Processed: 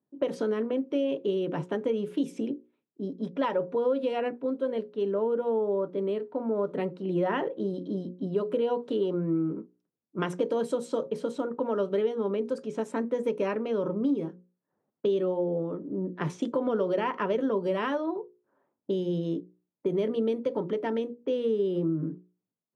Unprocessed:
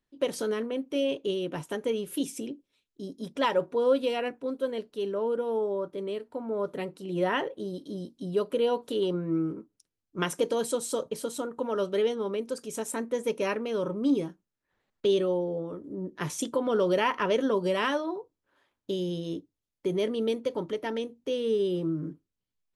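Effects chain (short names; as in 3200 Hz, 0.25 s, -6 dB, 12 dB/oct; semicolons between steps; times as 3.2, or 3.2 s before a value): HPF 140 Hz 24 dB/oct; low shelf 250 Hz +3.5 dB; in parallel at +2 dB: vocal rider 2 s; on the sum: LPF 1300 Hz 6 dB/oct; notches 60/120/180/240/300/360/420/480/540 Hz; compressor 3:1, threshold -21 dBFS, peak gain reduction 7.5 dB; low-pass opened by the level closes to 850 Hz, open at -22 dBFS; gain -3.5 dB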